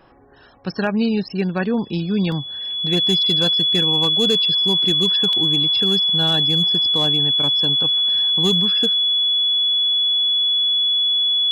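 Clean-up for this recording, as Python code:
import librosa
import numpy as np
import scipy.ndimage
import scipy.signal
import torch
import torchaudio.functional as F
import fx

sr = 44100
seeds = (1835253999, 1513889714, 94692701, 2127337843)

y = fx.fix_declip(x, sr, threshold_db=-11.0)
y = fx.notch(y, sr, hz=3400.0, q=30.0)
y = fx.fix_interpolate(y, sr, at_s=(2.32, 5.33), length_ms=1.4)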